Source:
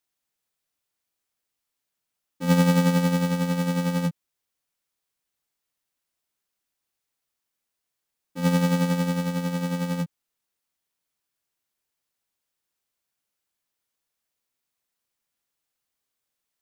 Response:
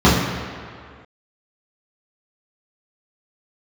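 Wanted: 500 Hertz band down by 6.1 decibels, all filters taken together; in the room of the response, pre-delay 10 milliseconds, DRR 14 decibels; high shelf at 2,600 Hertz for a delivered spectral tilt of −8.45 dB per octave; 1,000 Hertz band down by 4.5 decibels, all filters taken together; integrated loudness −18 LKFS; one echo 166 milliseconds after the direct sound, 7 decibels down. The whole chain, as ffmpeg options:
-filter_complex "[0:a]equalizer=frequency=500:width_type=o:gain=-5.5,equalizer=frequency=1000:width_type=o:gain=-5,highshelf=frequency=2600:gain=6.5,aecho=1:1:166:0.447,asplit=2[link_01][link_02];[1:a]atrim=start_sample=2205,adelay=10[link_03];[link_02][link_03]afir=irnorm=-1:irlink=0,volume=-41dB[link_04];[link_01][link_04]amix=inputs=2:normalize=0,volume=0.5dB"

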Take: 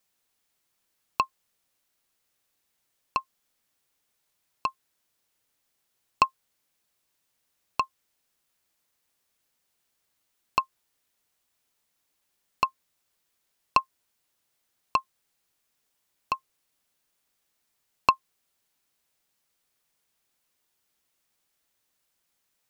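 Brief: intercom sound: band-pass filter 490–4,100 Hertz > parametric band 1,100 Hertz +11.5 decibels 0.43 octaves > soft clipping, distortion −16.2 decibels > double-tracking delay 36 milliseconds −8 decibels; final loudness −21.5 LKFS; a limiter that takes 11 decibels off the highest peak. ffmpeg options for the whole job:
ffmpeg -i in.wav -filter_complex "[0:a]alimiter=limit=-13.5dB:level=0:latency=1,highpass=490,lowpass=4100,equalizer=frequency=1100:width_type=o:width=0.43:gain=11.5,asoftclip=threshold=-12.5dB,asplit=2[link_01][link_02];[link_02]adelay=36,volume=-8dB[link_03];[link_01][link_03]amix=inputs=2:normalize=0,volume=7dB" out.wav

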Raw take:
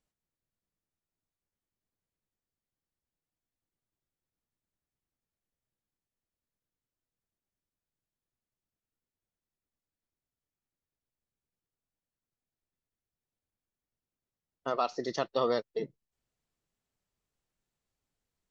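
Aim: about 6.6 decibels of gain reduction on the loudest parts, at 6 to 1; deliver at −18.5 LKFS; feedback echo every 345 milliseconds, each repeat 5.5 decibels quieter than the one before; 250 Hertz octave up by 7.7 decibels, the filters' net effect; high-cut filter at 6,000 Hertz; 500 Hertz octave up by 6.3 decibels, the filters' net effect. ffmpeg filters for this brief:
ffmpeg -i in.wav -af "lowpass=6000,equalizer=frequency=250:width_type=o:gain=7.5,equalizer=frequency=500:width_type=o:gain=5.5,acompressor=threshold=-25dB:ratio=6,aecho=1:1:345|690|1035|1380|1725|2070|2415:0.531|0.281|0.149|0.079|0.0419|0.0222|0.0118,volume=14dB" out.wav

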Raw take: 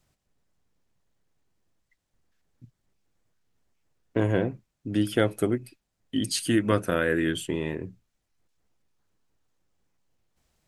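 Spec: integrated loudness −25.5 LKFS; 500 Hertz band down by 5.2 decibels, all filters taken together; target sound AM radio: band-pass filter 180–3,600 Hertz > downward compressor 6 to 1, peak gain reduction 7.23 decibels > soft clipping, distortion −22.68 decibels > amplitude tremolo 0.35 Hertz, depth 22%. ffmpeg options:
ffmpeg -i in.wav -af "highpass=180,lowpass=3600,equalizer=frequency=500:width_type=o:gain=-6.5,acompressor=threshold=-27dB:ratio=6,asoftclip=threshold=-19.5dB,tremolo=f=0.35:d=0.22,volume=11dB" out.wav

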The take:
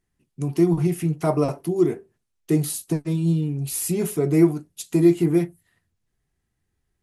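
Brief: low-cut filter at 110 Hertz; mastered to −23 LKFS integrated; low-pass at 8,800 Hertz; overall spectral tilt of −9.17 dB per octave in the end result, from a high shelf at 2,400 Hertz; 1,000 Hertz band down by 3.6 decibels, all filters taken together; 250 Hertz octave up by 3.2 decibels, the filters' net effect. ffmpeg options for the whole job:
ffmpeg -i in.wav -af "highpass=110,lowpass=8800,equalizer=frequency=250:width_type=o:gain=6.5,equalizer=frequency=1000:width_type=o:gain=-6.5,highshelf=frequency=2400:gain=4.5,volume=-3.5dB" out.wav

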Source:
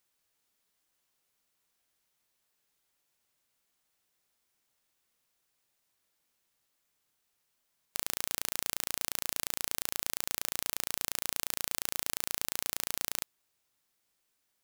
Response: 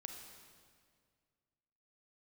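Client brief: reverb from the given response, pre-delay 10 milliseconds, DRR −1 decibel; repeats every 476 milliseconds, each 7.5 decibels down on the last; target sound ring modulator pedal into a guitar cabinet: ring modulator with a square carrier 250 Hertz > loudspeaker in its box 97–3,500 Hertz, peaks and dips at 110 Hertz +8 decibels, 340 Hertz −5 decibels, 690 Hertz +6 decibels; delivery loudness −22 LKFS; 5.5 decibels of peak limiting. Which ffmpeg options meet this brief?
-filter_complex "[0:a]alimiter=limit=-10dB:level=0:latency=1,aecho=1:1:476|952|1428|1904|2380:0.422|0.177|0.0744|0.0312|0.0131,asplit=2[link_01][link_02];[1:a]atrim=start_sample=2205,adelay=10[link_03];[link_02][link_03]afir=irnorm=-1:irlink=0,volume=5dB[link_04];[link_01][link_04]amix=inputs=2:normalize=0,aeval=exprs='val(0)*sgn(sin(2*PI*250*n/s))':channel_layout=same,highpass=97,equalizer=frequency=110:width_type=q:width=4:gain=8,equalizer=frequency=340:width_type=q:width=4:gain=-5,equalizer=frequency=690:width_type=q:width=4:gain=6,lowpass=frequency=3500:width=0.5412,lowpass=frequency=3500:width=1.3066,volume=22.5dB"

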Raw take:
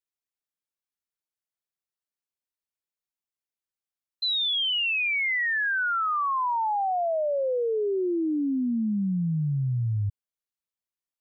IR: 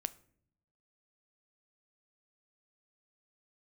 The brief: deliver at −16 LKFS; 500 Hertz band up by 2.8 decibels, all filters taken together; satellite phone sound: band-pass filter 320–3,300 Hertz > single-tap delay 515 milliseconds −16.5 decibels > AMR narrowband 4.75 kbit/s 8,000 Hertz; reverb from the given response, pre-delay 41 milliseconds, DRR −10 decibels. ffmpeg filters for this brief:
-filter_complex "[0:a]equalizer=frequency=500:width_type=o:gain=4.5,asplit=2[link_01][link_02];[1:a]atrim=start_sample=2205,adelay=41[link_03];[link_02][link_03]afir=irnorm=-1:irlink=0,volume=11dB[link_04];[link_01][link_04]amix=inputs=2:normalize=0,highpass=320,lowpass=3300,aecho=1:1:515:0.15" -ar 8000 -c:a libopencore_amrnb -b:a 4750

